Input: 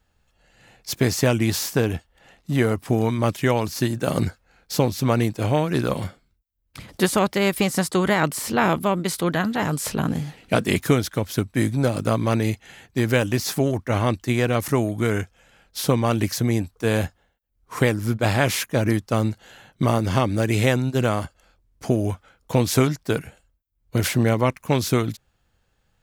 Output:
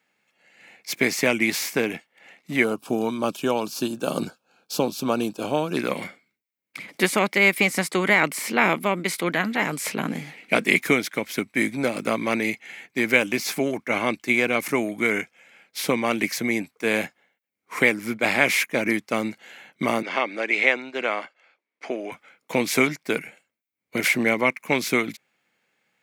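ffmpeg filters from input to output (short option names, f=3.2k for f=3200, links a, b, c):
-filter_complex "[0:a]asettb=1/sr,asplit=3[a][b][c];[a]atrim=end=2.644[d];[b]atrim=start=2.64:end=5.77,asetpts=PTS-STARTPTS,afade=t=in:d=0.004:c=qsin,afade=t=out:st=3.126:d=0.004:c=qsin,asuperstop=centerf=2000:order=4:qfactor=1.6[e];[c]atrim=start=5.766[f];[d][e]acrossfade=d=0.004:c1=hsin:c2=qsin[g];[g][f]acrossfade=d=0.004:c1=qsin:c2=hsin,asettb=1/sr,asplit=3[h][i][j];[h]atrim=end=13.164[k];[i]atrim=start=13.16:end=14.78,asetpts=PTS-STARTPTS,afade=t=in:d=0.004:c=qsin,afade=t=out:st=1.616:d=0.004:c=qsin,bandreject=f=1.9k:w=12[l];[j]atrim=start=14.776[m];[k][l]acrossfade=d=0.004:c1=hsin:c2=qsin[n];[n][m]acrossfade=d=0.004:c1=qsin:c2=hsin,asettb=1/sr,asplit=3[o][p][q];[o]atrim=end=20.024[r];[p]atrim=start=20.02:end=22.12,asetpts=PTS-STARTPTS,afade=t=in:d=0.004:c=qsin,afade=t=out:st=2.096:d=0.004:c=qsin,highpass=440,lowpass=3.9k[s];[q]atrim=start=22.116[t];[r][s]acrossfade=d=0.004:c1=hsin:c2=qsin[u];[u][t]acrossfade=d=0.004:c1=qsin:c2=hsin,highpass=f=190:w=0.5412,highpass=f=190:w=1.3066,equalizer=f=2.2k:t=o:w=0.42:g=15,volume=-2dB"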